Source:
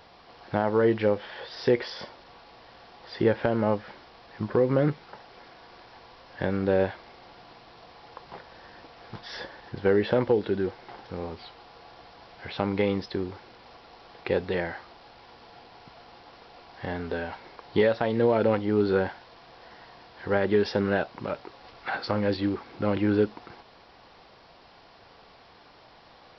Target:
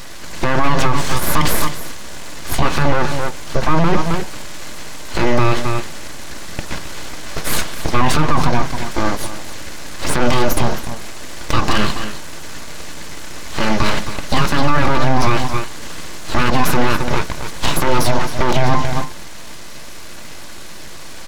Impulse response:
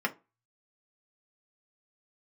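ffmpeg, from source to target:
-filter_complex "[0:a]highshelf=f=3.3k:g=11,bandreject=f=60:t=h:w=6,bandreject=f=120:t=h:w=6,bandreject=f=180:t=h:w=6,bandreject=f=240:t=h:w=6,bandreject=f=300:t=h:w=6,bandreject=f=360:t=h:w=6,bandreject=f=420:t=h:w=6,aecho=1:1:4.3:0.44,aeval=exprs='abs(val(0))':c=same,asetrate=54684,aresample=44100,lowshelf=f=380:g=7,aecho=1:1:266:0.2,asplit=2[a][b];[1:a]atrim=start_sample=2205,asetrate=36162,aresample=44100[c];[b][c]afir=irnorm=-1:irlink=0,volume=-18dB[d];[a][d]amix=inputs=2:normalize=0,alimiter=level_in=16.5dB:limit=-1dB:release=50:level=0:latency=1,volume=-1dB"

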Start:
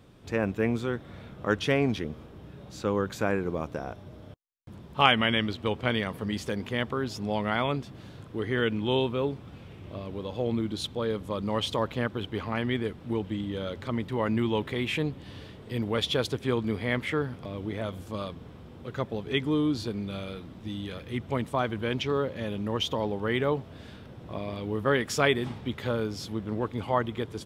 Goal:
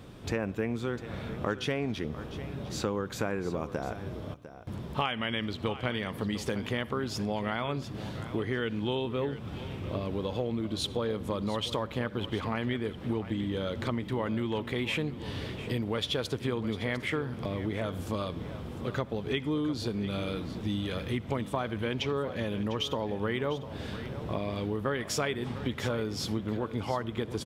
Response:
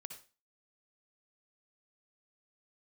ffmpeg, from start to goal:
-filter_complex "[0:a]asplit=2[a][b];[1:a]atrim=start_sample=2205[c];[b][c]afir=irnorm=-1:irlink=0,volume=-9dB[d];[a][d]amix=inputs=2:normalize=0,acompressor=threshold=-34dB:ratio=6,asplit=2[e][f];[f]aecho=0:1:701:0.211[g];[e][g]amix=inputs=2:normalize=0,volume=5.5dB"

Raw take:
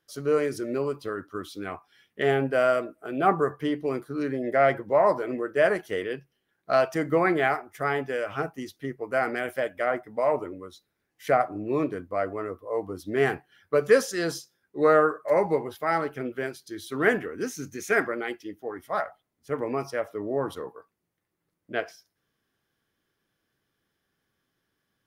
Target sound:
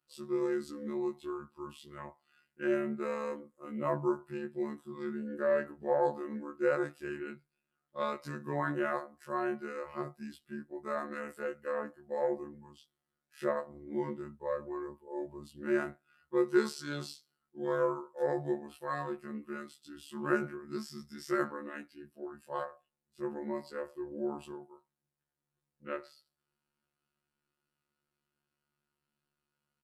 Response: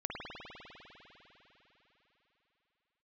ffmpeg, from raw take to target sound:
-af "afftfilt=real='hypot(re,im)*cos(PI*b)':imag='0':win_size=2048:overlap=0.75,aecho=1:1:4.7:0.65,asetrate=37044,aresample=44100,volume=-8dB"

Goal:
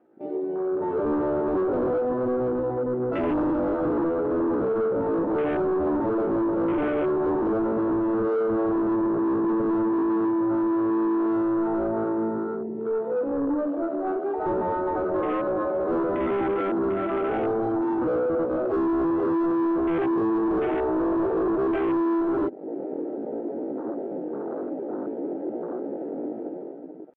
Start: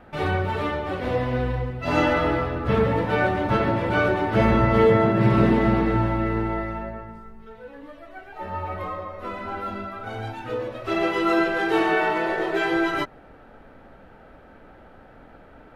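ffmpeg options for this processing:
-af "acompressor=threshold=-33dB:ratio=12,atempo=0.58,highpass=f=340:t=q:w=3.7,dynaudnorm=f=120:g=13:m=15dB,tiltshelf=f=670:g=5,asoftclip=type=tanh:threshold=-21.5dB,afwtdn=0.0316,highshelf=f=2.9k:g=-10.5"

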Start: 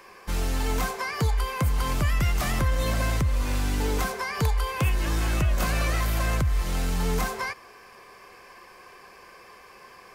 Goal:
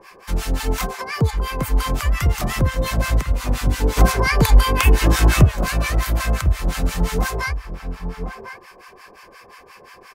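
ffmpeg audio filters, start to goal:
-filter_complex "[0:a]asplit=2[a][b];[b]adelay=1050,volume=-7dB,highshelf=f=4k:g=-23.6[c];[a][c]amix=inputs=2:normalize=0,asplit=3[d][e][f];[d]afade=t=out:st=3.96:d=0.02[g];[e]acontrast=76,afade=t=in:st=3.96:d=0.02,afade=t=out:st=5.44:d=0.02[h];[f]afade=t=in:st=5.44:d=0.02[i];[g][h][i]amix=inputs=3:normalize=0,acrossover=split=880[j][k];[j]aeval=exprs='val(0)*(1-1/2+1/2*cos(2*PI*5.7*n/s))':c=same[l];[k]aeval=exprs='val(0)*(1-1/2-1/2*cos(2*PI*5.7*n/s))':c=same[m];[l][m]amix=inputs=2:normalize=0,volume=8.5dB"

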